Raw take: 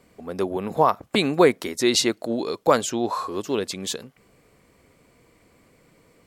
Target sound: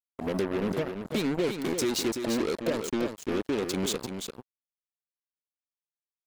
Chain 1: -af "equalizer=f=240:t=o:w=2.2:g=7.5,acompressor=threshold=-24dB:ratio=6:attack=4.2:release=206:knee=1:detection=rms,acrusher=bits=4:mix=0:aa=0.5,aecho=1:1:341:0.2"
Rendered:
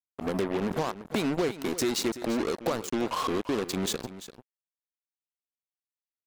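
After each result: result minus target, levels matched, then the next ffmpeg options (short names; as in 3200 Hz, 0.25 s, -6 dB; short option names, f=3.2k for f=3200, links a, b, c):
1000 Hz band +5.5 dB; echo-to-direct -7 dB
-af "equalizer=f=240:t=o:w=2.2:g=7.5,acompressor=threshold=-24dB:ratio=6:attack=4.2:release=206:knee=1:detection=rms,asuperstop=centerf=1200:order=20:qfactor=0.85,acrusher=bits=4:mix=0:aa=0.5,aecho=1:1:341:0.2"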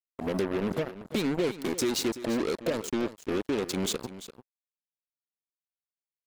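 echo-to-direct -7 dB
-af "equalizer=f=240:t=o:w=2.2:g=7.5,acompressor=threshold=-24dB:ratio=6:attack=4.2:release=206:knee=1:detection=rms,asuperstop=centerf=1200:order=20:qfactor=0.85,acrusher=bits=4:mix=0:aa=0.5,aecho=1:1:341:0.447"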